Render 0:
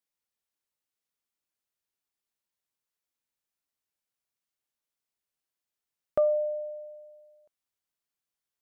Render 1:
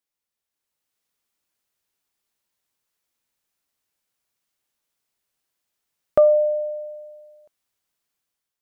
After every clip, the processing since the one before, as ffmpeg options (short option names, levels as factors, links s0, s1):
-af "dynaudnorm=f=480:g=3:m=2.51,volume=1.19"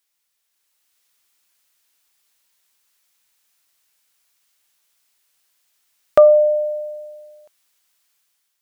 -af "tiltshelf=f=780:g=-7,volume=2.11"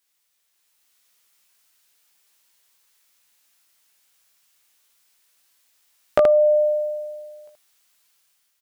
-filter_complex "[0:a]acompressor=threshold=0.158:ratio=6,asplit=2[s0][s1];[s1]aecho=0:1:17|77:0.631|0.631[s2];[s0][s2]amix=inputs=2:normalize=0"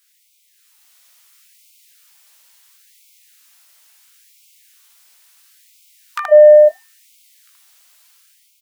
-af "asoftclip=type=tanh:threshold=0.355,alimiter=level_in=4.47:limit=0.891:release=50:level=0:latency=1,afftfilt=real='re*gte(b*sr/1024,470*pow(2100/470,0.5+0.5*sin(2*PI*0.73*pts/sr)))':imag='im*gte(b*sr/1024,470*pow(2100/470,0.5+0.5*sin(2*PI*0.73*pts/sr)))':win_size=1024:overlap=0.75,volume=0.891"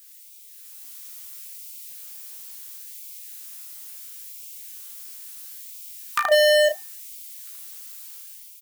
-filter_complex "[0:a]volume=4.47,asoftclip=hard,volume=0.224,crystalizer=i=2:c=0,asplit=2[s0][s1];[s1]adelay=34,volume=0.355[s2];[s0][s2]amix=inputs=2:normalize=0"